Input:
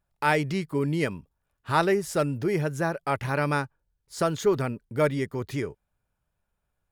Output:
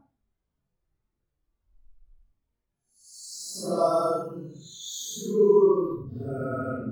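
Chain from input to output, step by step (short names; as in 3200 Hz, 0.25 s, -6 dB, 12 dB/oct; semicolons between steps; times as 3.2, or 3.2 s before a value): added noise brown -50 dBFS; spectral noise reduction 27 dB; Paulstretch 6.7×, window 0.05 s, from 3.66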